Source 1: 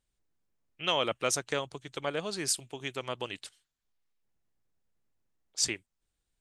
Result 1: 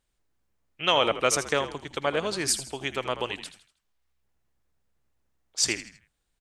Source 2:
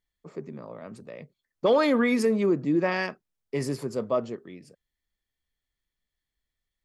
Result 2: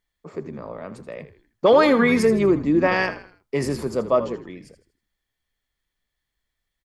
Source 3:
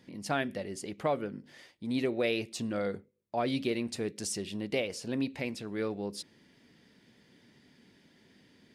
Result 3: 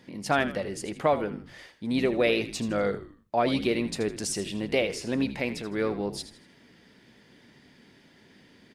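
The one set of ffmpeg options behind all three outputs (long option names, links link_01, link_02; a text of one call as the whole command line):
ffmpeg -i in.wav -filter_complex "[0:a]equalizer=frequency=1100:width_type=o:width=2.9:gain=4,asplit=2[link_01][link_02];[link_02]asplit=4[link_03][link_04][link_05][link_06];[link_03]adelay=80,afreqshift=-65,volume=-12.5dB[link_07];[link_04]adelay=160,afreqshift=-130,volume=-20.7dB[link_08];[link_05]adelay=240,afreqshift=-195,volume=-28.9dB[link_09];[link_06]adelay=320,afreqshift=-260,volume=-37dB[link_10];[link_07][link_08][link_09][link_10]amix=inputs=4:normalize=0[link_11];[link_01][link_11]amix=inputs=2:normalize=0,volume=3.5dB" out.wav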